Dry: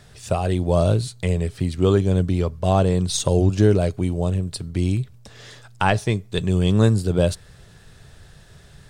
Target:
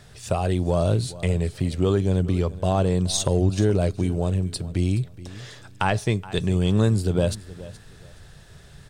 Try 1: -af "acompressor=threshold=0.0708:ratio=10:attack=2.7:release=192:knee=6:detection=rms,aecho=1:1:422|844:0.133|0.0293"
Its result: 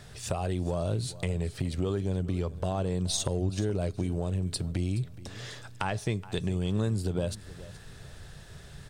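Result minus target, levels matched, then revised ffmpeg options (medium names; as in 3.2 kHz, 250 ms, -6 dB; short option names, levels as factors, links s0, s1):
compression: peak gain reduction +10 dB
-af "acompressor=threshold=0.251:ratio=10:attack=2.7:release=192:knee=6:detection=rms,aecho=1:1:422|844:0.133|0.0293"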